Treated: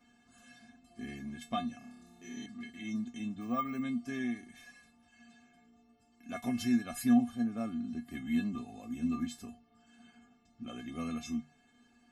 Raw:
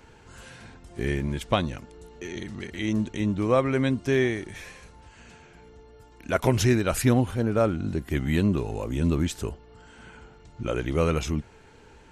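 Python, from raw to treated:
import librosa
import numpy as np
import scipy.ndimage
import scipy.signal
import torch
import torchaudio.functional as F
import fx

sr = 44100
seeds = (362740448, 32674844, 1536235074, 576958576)

y = fx.peak_eq(x, sr, hz=60.0, db=-7.0, octaves=0.24)
y = fx.hum_notches(y, sr, base_hz=50, count=3)
y = fx.comb_fb(y, sr, f0_hz=240.0, decay_s=0.16, harmonics='odd', damping=0.0, mix_pct=100)
y = fx.room_flutter(y, sr, wall_m=4.9, rt60_s=1.0, at=(1.78, 2.46))
y = fx.resample_bad(y, sr, factor=2, down='filtered', up='hold', at=(3.41, 3.82))
y = y * librosa.db_to_amplitude(2.0)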